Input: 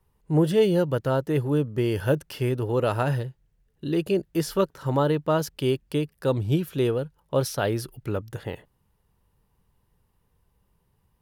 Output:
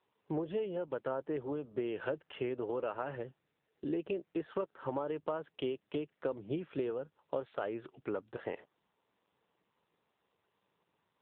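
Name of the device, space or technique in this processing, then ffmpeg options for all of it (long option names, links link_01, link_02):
voicemail: -filter_complex "[0:a]asettb=1/sr,asplit=3[link_01][link_02][link_03];[link_01]atrim=end=0.774[link_04];[link_02]atrim=start=0.77:end=1.33,asetpts=PTS-STARTPTS,afade=type=in:duration=0.004:curve=qsin,afade=type=out:start_time=0.556:duration=0.004:curve=qsin,lowpass=12000[link_05];[link_03]atrim=start=1.326[link_06];[link_04][link_05]acrossfade=duration=0.004:curve1=hsin:curve2=qsin[link_07];[link_07][link_06]acrossfade=duration=0.004:curve1=qsin:curve2=hsin,highpass=330,lowpass=2600,acompressor=threshold=-32dB:ratio=8" -ar 8000 -c:a libopencore_amrnb -b:a 7400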